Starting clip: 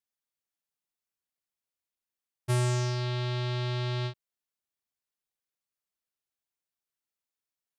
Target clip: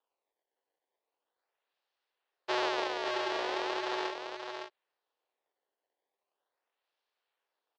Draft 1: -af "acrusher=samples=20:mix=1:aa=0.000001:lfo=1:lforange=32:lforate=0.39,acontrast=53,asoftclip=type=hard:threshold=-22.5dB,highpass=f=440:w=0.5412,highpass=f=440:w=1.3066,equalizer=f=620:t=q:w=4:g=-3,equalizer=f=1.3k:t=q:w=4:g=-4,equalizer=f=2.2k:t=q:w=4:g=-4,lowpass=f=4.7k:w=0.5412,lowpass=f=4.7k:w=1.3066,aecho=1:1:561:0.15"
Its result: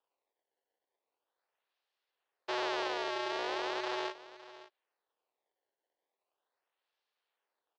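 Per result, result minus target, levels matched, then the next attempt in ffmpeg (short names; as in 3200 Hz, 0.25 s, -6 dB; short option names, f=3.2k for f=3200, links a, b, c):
hard clip: distortion +21 dB; echo-to-direct -10.5 dB
-af "acrusher=samples=20:mix=1:aa=0.000001:lfo=1:lforange=32:lforate=0.39,acontrast=53,asoftclip=type=hard:threshold=-16.5dB,highpass=f=440:w=0.5412,highpass=f=440:w=1.3066,equalizer=f=620:t=q:w=4:g=-3,equalizer=f=1.3k:t=q:w=4:g=-4,equalizer=f=2.2k:t=q:w=4:g=-4,lowpass=f=4.7k:w=0.5412,lowpass=f=4.7k:w=1.3066,aecho=1:1:561:0.15"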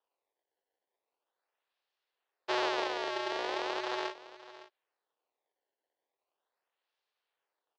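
echo-to-direct -10.5 dB
-af "acrusher=samples=20:mix=1:aa=0.000001:lfo=1:lforange=32:lforate=0.39,acontrast=53,asoftclip=type=hard:threshold=-16.5dB,highpass=f=440:w=0.5412,highpass=f=440:w=1.3066,equalizer=f=620:t=q:w=4:g=-3,equalizer=f=1.3k:t=q:w=4:g=-4,equalizer=f=2.2k:t=q:w=4:g=-4,lowpass=f=4.7k:w=0.5412,lowpass=f=4.7k:w=1.3066,aecho=1:1:561:0.501"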